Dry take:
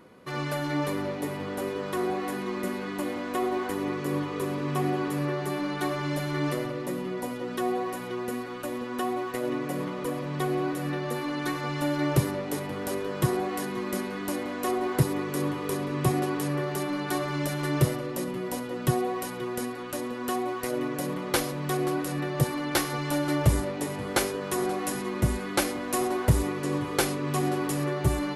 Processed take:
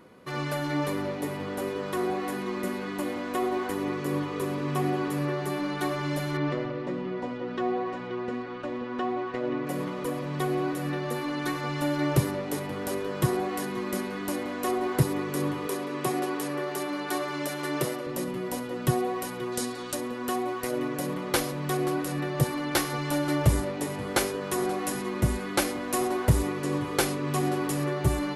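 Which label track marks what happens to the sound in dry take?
6.370000	9.670000	Gaussian low-pass sigma 1.9 samples
15.670000	18.070000	high-pass 270 Hz
19.520000	19.950000	high-order bell 5.7 kHz +8.5 dB

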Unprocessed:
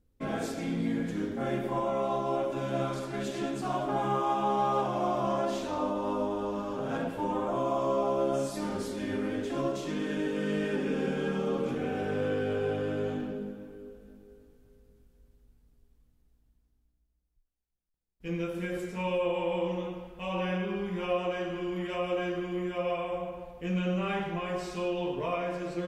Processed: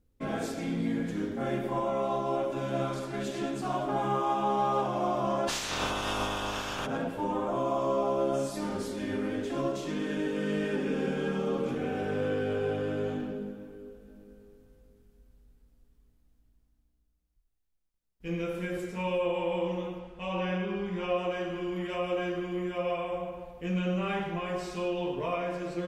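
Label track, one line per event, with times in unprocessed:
5.470000	6.850000	spectral peaks clipped ceiling under each frame's peak by 29 dB
14.050000	18.530000	reverb throw, RT60 1.1 s, DRR 4.5 dB
19.990000	21.170000	low-pass 8.3 kHz

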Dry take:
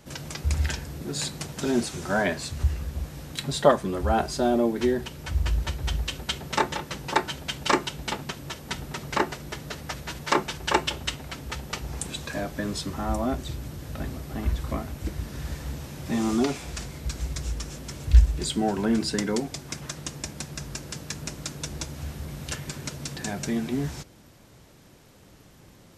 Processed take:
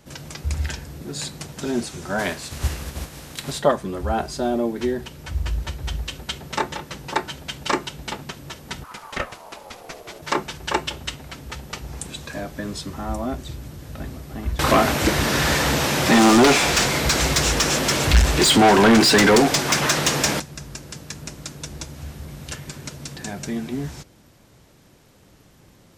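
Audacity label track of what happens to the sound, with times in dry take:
2.180000	3.580000	spectral contrast reduction exponent 0.68
8.830000	10.210000	ring modulator 1.2 kHz -> 480 Hz
14.590000	20.400000	overdrive pedal drive 33 dB, tone 4.7 kHz, clips at -5 dBFS

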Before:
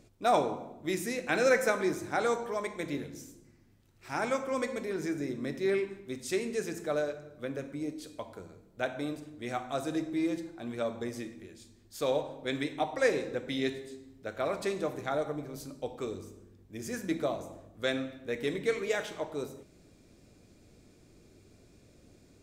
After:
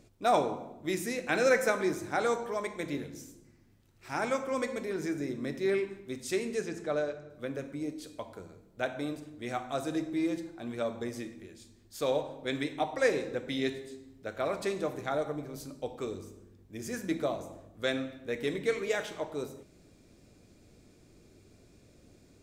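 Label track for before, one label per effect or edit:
6.610000	7.300000	distance through air 58 m

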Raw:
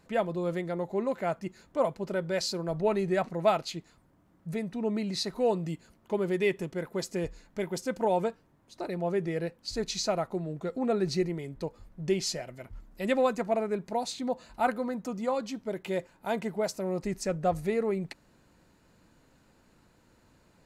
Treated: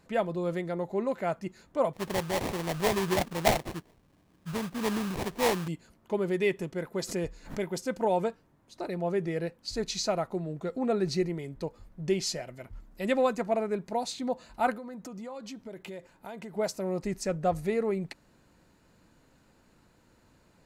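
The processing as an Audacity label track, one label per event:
1.930000	5.680000	sample-rate reducer 1.4 kHz, jitter 20%
6.990000	7.700000	swell ahead of each attack at most 140 dB/s
14.740000	16.540000	compression, threshold -38 dBFS

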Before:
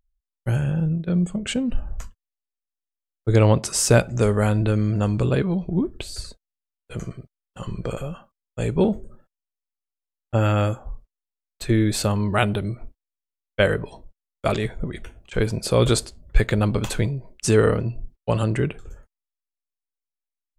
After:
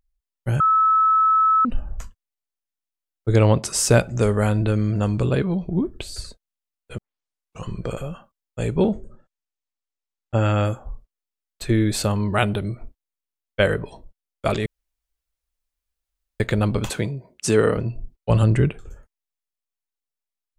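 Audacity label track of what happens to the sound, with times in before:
0.600000	1.650000	bleep 1.3 kHz -13.5 dBFS
6.980000	6.980000	tape start 0.68 s
8.760000	10.650000	steep low-pass 8.4 kHz
14.660000	16.400000	room tone
16.900000	17.770000	high-pass 130 Hz
18.300000	18.700000	bass shelf 140 Hz +11 dB

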